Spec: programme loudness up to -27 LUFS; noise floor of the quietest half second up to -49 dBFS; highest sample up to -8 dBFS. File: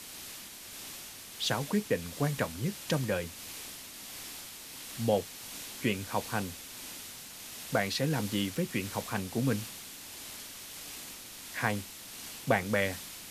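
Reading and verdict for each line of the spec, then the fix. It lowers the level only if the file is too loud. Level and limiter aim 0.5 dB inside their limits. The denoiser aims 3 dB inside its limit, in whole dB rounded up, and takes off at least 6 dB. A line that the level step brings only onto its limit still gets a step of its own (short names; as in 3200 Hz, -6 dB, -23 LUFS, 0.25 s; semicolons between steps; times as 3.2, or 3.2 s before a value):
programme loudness -34.5 LUFS: OK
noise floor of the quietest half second -46 dBFS: fail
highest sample -13.0 dBFS: OK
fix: denoiser 6 dB, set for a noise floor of -46 dBFS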